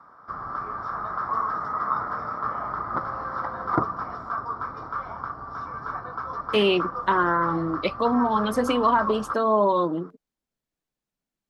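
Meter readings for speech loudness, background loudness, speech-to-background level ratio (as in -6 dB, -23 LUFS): -23.5 LUFS, -30.5 LUFS, 7.0 dB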